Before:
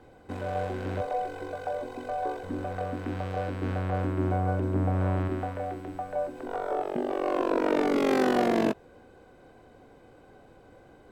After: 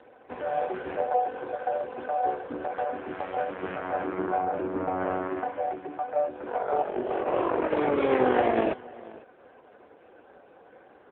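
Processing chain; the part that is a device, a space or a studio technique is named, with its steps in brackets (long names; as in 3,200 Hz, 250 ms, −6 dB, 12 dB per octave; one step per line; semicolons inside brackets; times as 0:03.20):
0:02.78–0:03.20: high-pass filter 240 Hz 24 dB per octave
satellite phone (band-pass filter 390–3,300 Hz; single-tap delay 492 ms −21 dB; level +6.5 dB; AMR narrowband 4.75 kbit/s 8,000 Hz)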